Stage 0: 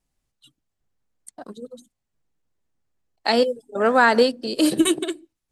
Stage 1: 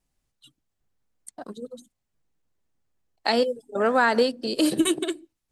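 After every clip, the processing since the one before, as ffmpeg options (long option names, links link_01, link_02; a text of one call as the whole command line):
ffmpeg -i in.wav -af "acompressor=threshold=-23dB:ratio=1.5" out.wav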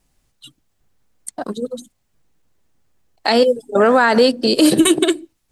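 ffmpeg -i in.wav -af "alimiter=level_in=15dB:limit=-1dB:release=50:level=0:latency=1,volume=-2.5dB" out.wav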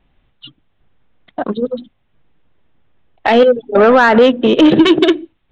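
ffmpeg -i in.wav -af "aresample=8000,aresample=44100,acontrast=72" out.wav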